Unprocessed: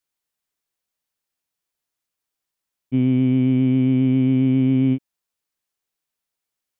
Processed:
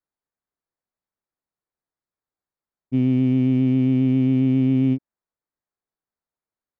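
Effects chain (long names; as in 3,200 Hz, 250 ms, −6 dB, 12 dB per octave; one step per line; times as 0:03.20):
adaptive Wiener filter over 15 samples
level −1 dB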